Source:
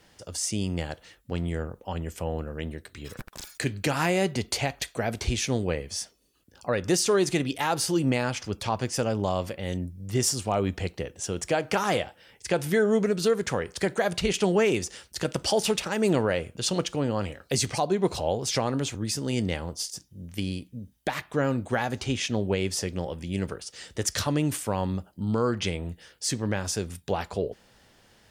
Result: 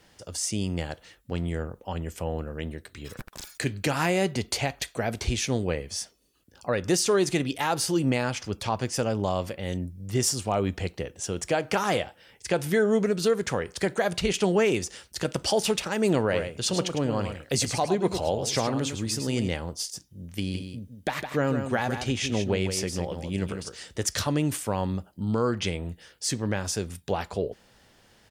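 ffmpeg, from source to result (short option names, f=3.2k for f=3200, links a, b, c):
-filter_complex "[0:a]asplit=3[a][b][c];[a]afade=t=out:st=16.31:d=0.02[d];[b]aecho=1:1:105:0.398,afade=t=in:st=16.31:d=0.02,afade=t=out:st=19.47:d=0.02[e];[c]afade=t=in:st=19.47:d=0.02[f];[d][e][f]amix=inputs=3:normalize=0,asplit=3[g][h][i];[g]afade=t=out:st=20.53:d=0.02[j];[h]aecho=1:1:159:0.422,afade=t=in:st=20.53:d=0.02,afade=t=out:st=23.82:d=0.02[k];[i]afade=t=in:st=23.82:d=0.02[l];[j][k][l]amix=inputs=3:normalize=0"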